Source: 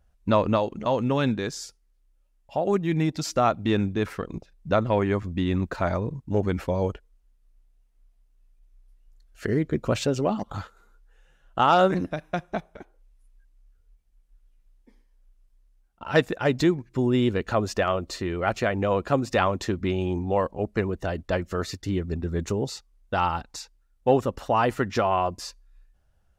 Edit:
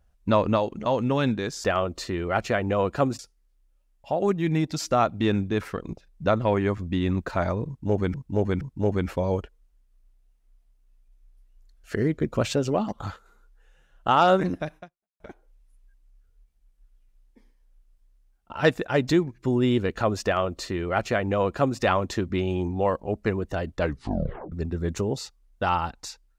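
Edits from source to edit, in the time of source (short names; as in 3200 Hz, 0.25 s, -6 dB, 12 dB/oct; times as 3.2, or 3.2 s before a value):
6.12–6.59 loop, 3 plays
12.28–12.71 fade out exponential
17.76–19.31 copy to 1.64
21.3 tape stop 0.73 s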